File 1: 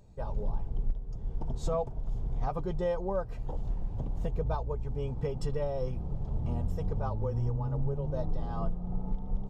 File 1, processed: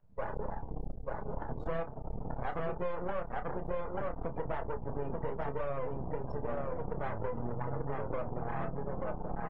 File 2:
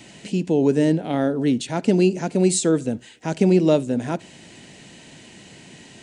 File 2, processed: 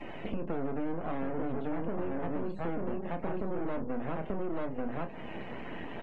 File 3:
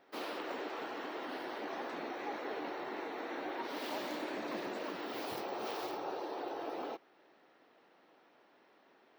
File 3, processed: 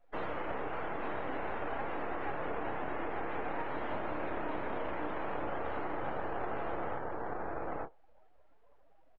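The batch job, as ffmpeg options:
ffmpeg -i in.wav -filter_complex "[0:a]bandreject=frequency=50:width_type=h:width=6,bandreject=frequency=100:width_type=h:width=6,bandreject=frequency=150:width_type=h:width=6,bandreject=frequency=200:width_type=h:width=6,asplit=2[link_01][link_02];[link_02]aecho=0:1:887:0.668[link_03];[link_01][link_03]amix=inputs=2:normalize=0,acrossover=split=280|2300[link_04][link_05][link_06];[link_04]acompressor=threshold=-24dB:ratio=4[link_07];[link_05]acompressor=threshold=-29dB:ratio=4[link_08];[link_06]acompressor=threshold=-48dB:ratio=4[link_09];[link_07][link_08][link_09]amix=inputs=3:normalize=0,bandreject=frequency=380:width=12,acrossover=split=370|1000[link_10][link_11][link_12];[link_12]asoftclip=type=tanh:threshold=-39dB[link_13];[link_10][link_11][link_13]amix=inputs=3:normalize=0,asplit=2[link_14][link_15];[link_15]highpass=frequency=720:poles=1,volume=23dB,asoftclip=type=tanh:threshold=-12dB[link_16];[link_14][link_16]amix=inputs=2:normalize=0,lowpass=frequency=1200:poles=1,volume=-6dB,highshelf=frequency=2500:gain=-8,aeval=exprs='max(val(0),0)':channel_layout=same,asplit=2[link_17][link_18];[link_18]adelay=30,volume=-8dB[link_19];[link_17][link_19]amix=inputs=2:normalize=0,afftdn=noise_reduction=20:noise_floor=-46,acompressor=threshold=-32dB:ratio=3,adynamicequalizer=threshold=0.00126:dfrequency=4100:dqfactor=0.7:tfrequency=4100:tqfactor=0.7:attack=5:release=100:ratio=0.375:range=2:mode=cutabove:tftype=highshelf" out.wav

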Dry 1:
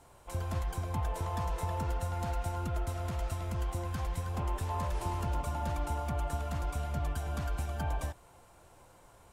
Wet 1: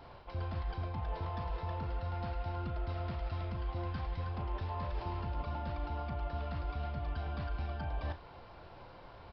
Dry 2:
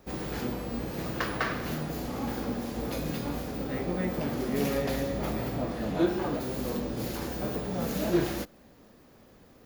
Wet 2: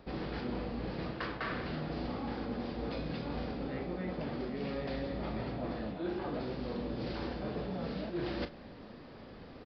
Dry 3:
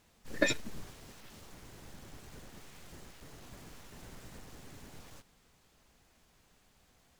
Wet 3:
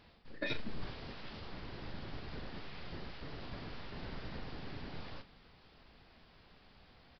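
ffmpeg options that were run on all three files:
ffmpeg -i in.wav -filter_complex "[0:a]areverse,acompressor=threshold=-40dB:ratio=16,areverse,asplit=2[link_01][link_02];[link_02]adelay=37,volume=-11dB[link_03];[link_01][link_03]amix=inputs=2:normalize=0,aresample=11025,aresample=44100,volume=6dB" out.wav

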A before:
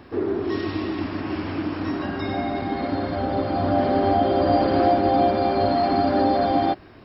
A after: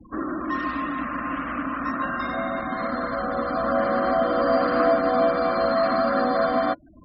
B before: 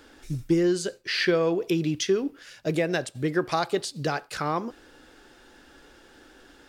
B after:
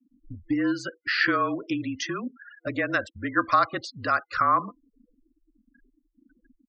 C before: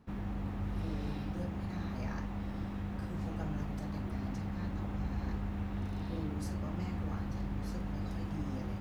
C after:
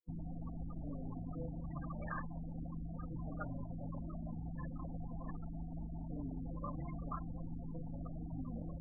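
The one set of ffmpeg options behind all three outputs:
ffmpeg -i in.wav -filter_complex "[0:a]lowpass=5100,afftfilt=real='re*gte(hypot(re,im),0.0141)':imag='im*gte(hypot(re,im),0.0141)':win_size=1024:overlap=0.75,superequalizer=7b=0.316:9b=0.631:10b=3.55:11b=2:13b=0.708,acrossover=split=290[link_01][link_02];[link_01]acompressor=threshold=-42dB:ratio=6[link_03];[link_03][link_02]amix=inputs=2:normalize=0,afreqshift=-36" out.wav

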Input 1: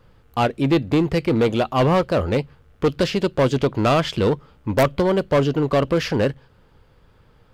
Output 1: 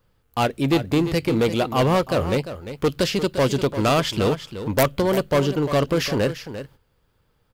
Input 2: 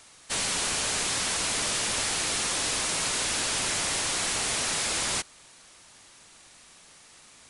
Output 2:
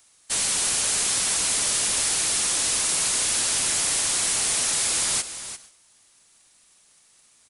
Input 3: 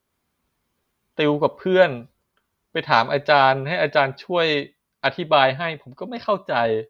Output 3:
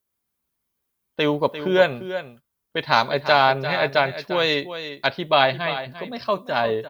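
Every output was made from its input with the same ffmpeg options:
ffmpeg -i in.wav -filter_complex "[0:a]aemphasis=mode=production:type=50kf,asplit=2[link_01][link_02];[link_02]aecho=0:1:347:0.266[link_03];[link_01][link_03]amix=inputs=2:normalize=0,agate=range=-10dB:threshold=-44dB:ratio=16:detection=peak,volume=-2dB" out.wav

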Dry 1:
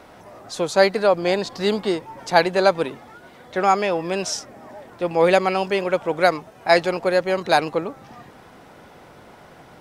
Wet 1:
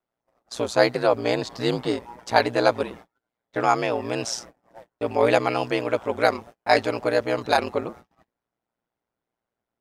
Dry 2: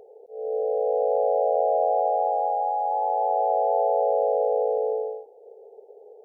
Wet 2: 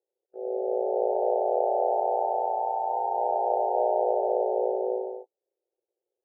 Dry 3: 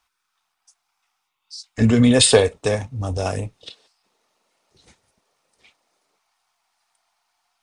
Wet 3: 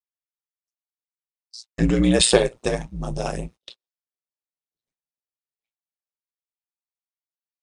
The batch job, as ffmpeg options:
ffmpeg -i in.wav -af "agate=range=-37dB:threshold=-38dB:ratio=16:detection=peak,aeval=exprs='val(0)*sin(2*PI*59*n/s)':channel_layout=same" out.wav

